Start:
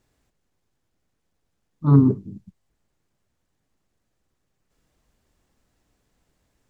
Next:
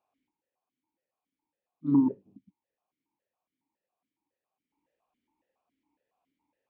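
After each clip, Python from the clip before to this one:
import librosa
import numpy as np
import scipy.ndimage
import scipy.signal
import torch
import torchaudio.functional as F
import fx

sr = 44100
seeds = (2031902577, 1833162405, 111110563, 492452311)

y = fx.peak_eq(x, sr, hz=930.0, db=12.5, octaves=0.36)
y = fx.vowel_held(y, sr, hz=7.2)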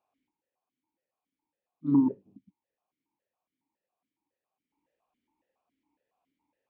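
y = x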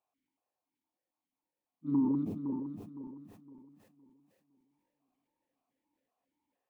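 y = fx.reverse_delay_fb(x, sr, ms=256, feedback_pct=58, wet_db=-3.0)
y = fx.sustainer(y, sr, db_per_s=41.0)
y = F.gain(torch.from_numpy(y), -7.0).numpy()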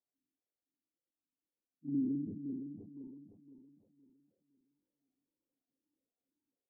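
y = fx.ladder_lowpass(x, sr, hz=530.0, resonance_pct=25)
y = fx.env_lowpass_down(y, sr, base_hz=380.0, full_db=-39.0)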